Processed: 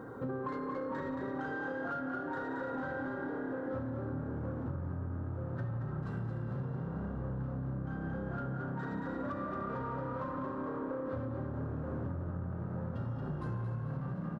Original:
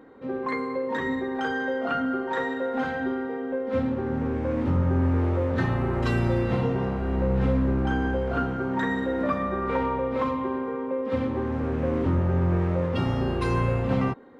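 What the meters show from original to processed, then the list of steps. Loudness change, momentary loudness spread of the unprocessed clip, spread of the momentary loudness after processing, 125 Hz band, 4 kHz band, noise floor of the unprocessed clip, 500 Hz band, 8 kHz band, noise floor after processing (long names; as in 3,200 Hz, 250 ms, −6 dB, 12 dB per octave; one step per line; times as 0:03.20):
−12.0 dB, 5 LU, 1 LU, −10.5 dB, below −20 dB, −31 dBFS, −13.5 dB, can't be measured, −40 dBFS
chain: soft clipping −25 dBFS, distortion −11 dB
parametric band 120 Hz +14 dB 0.76 octaves
single-tap delay 297 ms −14 dB
bit-depth reduction 12 bits, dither none
high shelf with overshoot 1,800 Hz −6.5 dB, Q 3
echo with shifted repeats 225 ms, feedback 49%, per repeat +35 Hz, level −5 dB
flanger 0.14 Hz, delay 1.7 ms, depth 8.9 ms, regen −86%
downward compressor 16 to 1, threshold −42 dBFS, peak gain reduction 23.5 dB
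level +7.5 dB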